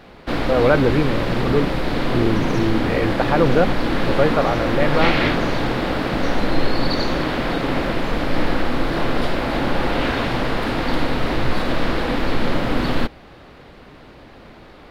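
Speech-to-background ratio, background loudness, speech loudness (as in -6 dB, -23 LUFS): 1.0 dB, -22.0 LUFS, -21.0 LUFS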